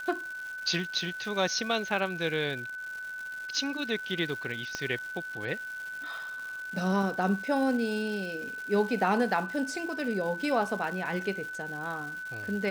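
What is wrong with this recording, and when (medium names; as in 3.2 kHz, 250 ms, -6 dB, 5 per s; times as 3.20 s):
crackle 360 per s -38 dBFS
whine 1.5 kHz -36 dBFS
4.75 s: pop -18 dBFS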